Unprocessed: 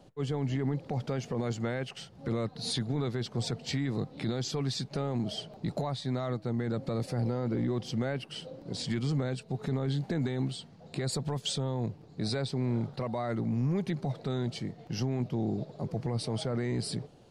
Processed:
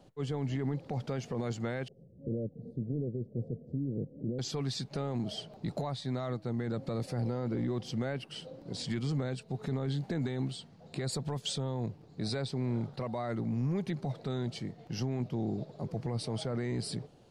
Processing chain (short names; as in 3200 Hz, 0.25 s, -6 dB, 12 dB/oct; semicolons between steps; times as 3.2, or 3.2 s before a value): 1.88–4.39 elliptic low-pass 550 Hz, stop band 50 dB; gain -2.5 dB